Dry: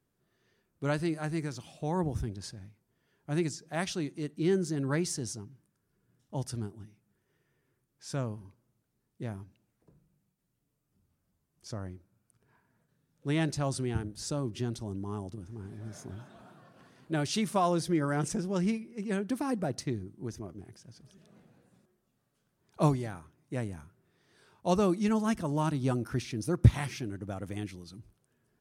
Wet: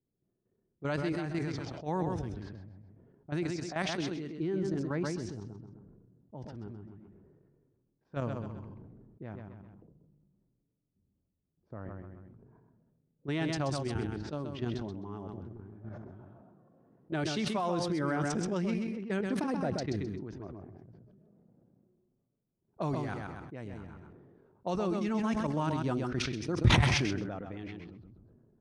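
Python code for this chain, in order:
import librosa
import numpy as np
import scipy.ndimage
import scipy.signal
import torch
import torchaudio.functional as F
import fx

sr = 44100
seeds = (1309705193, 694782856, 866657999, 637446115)

y = scipy.signal.sosfilt(scipy.signal.butter(2, 4900.0, 'lowpass', fs=sr, output='sos'), x)
y = fx.low_shelf(y, sr, hz=200.0, db=-5.0)
y = fx.env_lowpass(y, sr, base_hz=420.0, full_db=-30.0)
y = fx.level_steps(y, sr, step_db=11)
y = fx.high_shelf(y, sr, hz=2200.0, db=-11.0, at=(4.38, 6.81))
y = fx.echo_feedback(y, sr, ms=130, feedback_pct=19, wet_db=-7)
y = fx.sustainer(y, sr, db_per_s=29.0)
y = F.gain(torch.from_numpy(y), 1.5).numpy()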